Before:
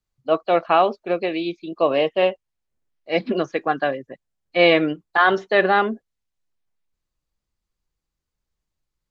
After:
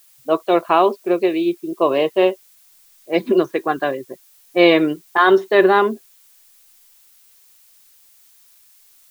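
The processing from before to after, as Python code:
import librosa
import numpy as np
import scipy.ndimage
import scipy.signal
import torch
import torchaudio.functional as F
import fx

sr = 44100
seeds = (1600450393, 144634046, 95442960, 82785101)

y = fx.env_lowpass(x, sr, base_hz=470.0, full_db=-16.0)
y = fx.small_body(y, sr, hz=(370.0, 1000.0, 3700.0), ring_ms=45, db=11)
y = fx.dmg_noise_colour(y, sr, seeds[0], colour='blue', level_db=-52.0)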